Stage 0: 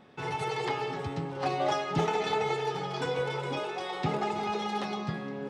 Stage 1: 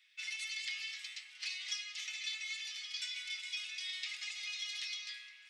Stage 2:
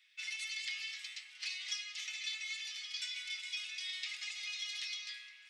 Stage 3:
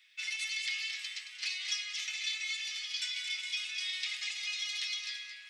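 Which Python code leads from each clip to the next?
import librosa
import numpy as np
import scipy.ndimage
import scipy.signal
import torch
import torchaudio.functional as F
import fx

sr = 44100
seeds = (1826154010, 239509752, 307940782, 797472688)

y1 = scipy.signal.sosfilt(scipy.signal.cheby1(4, 1.0, 2100.0, 'highpass', fs=sr, output='sos'), x)
y1 = fx.dynamic_eq(y1, sr, hz=5500.0, q=0.79, threshold_db=-57.0, ratio=4.0, max_db=7)
y1 = fx.rider(y1, sr, range_db=4, speed_s=0.5)
y1 = y1 * librosa.db_to_amplitude(-2.0)
y2 = y1
y3 = y2 + 10.0 ** (-9.0 / 20.0) * np.pad(y2, (int(222 * sr / 1000.0), 0))[:len(y2)]
y3 = y3 * librosa.db_to_amplitude(4.5)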